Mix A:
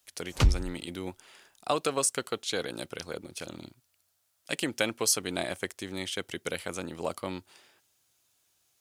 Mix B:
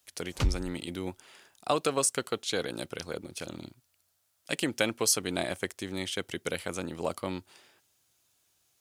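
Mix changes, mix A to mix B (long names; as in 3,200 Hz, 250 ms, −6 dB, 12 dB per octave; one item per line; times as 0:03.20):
speech: add low-shelf EQ 390 Hz +2.5 dB
background −5.0 dB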